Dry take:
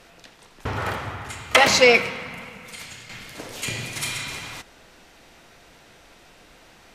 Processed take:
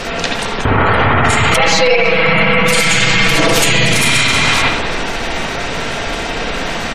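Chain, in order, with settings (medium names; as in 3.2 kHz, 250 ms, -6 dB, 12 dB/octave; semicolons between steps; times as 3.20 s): partial rectifier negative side -3 dB; compression 16:1, threshold -36 dBFS, peak gain reduction 25.5 dB; spectral gate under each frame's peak -25 dB strong; 1.50–3.93 s: comb 6.1 ms, depth 91%; speakerphone echo 310 ms, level -18 dB; reverberation, pre-delay 61 ms, DRR -0.5 dB; loudness maximiser +30.5 dB; trim -1 dB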